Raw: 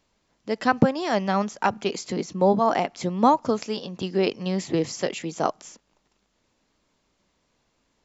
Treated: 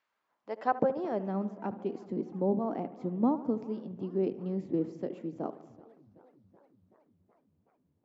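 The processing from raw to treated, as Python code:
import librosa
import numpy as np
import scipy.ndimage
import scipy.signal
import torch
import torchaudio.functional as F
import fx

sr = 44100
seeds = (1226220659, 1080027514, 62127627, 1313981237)

y = fx.echo_wet_lowpass(x, sr, ms=73, feedback_pct=62, hz=2700.0, wet_db=-15)
y = fx.filter_sweep_bandpass(y, sr, from_hz=1600.0, to_hz=270.0, start_s=0.02, end_s=1.41, q=1.6)
y = fx.echo_warbled(y, sr, ms=372, feedback_pct=68, rate_hz=2.8, cents=204, wet_db=-23)
y = y * 10.0 ** (-3.5 / 20.0)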